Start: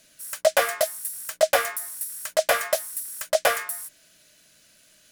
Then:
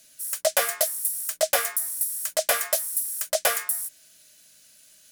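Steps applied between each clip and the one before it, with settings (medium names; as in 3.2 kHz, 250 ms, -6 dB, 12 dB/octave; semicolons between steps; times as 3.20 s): treble shelf 4.3 kHz +11.5 dB; trim -5 dB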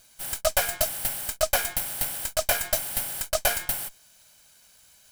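comb filter that takes the minimum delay 1.3 ms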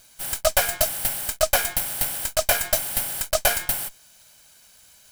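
companded quantiser 6-bit; trim +3.5 dB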